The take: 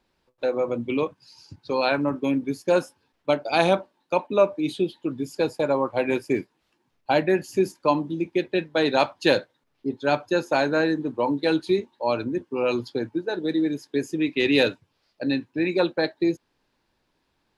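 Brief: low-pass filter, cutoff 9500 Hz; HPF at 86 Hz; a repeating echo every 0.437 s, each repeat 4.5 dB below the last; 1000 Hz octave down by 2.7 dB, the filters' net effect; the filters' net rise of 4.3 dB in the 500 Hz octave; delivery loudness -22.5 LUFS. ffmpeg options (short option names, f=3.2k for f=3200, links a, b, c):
-af "highpass=86,lowpass=9.5k,equalizer=f=500:t=o:g=7,equalizer=f=1k:t=o:g=-7,aecho=1:1:437|874|1311|1748|2185|2622|3059|3496|3933:0.596|0.357|0.214|0.129|0.0772|0.0463|0.0278|0.0167|0.01,volume=-2dB"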